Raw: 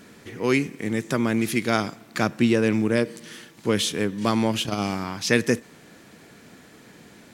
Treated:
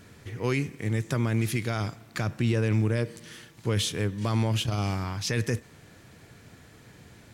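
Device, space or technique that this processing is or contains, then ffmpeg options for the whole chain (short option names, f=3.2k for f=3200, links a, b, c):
car stereo with a boomy subwoofer: -af "lowshelf=f=150:t=q:w=1.5:g=10,alimiter=limit=-12dB:level=0:latency=1:release=17,volume=-4dB"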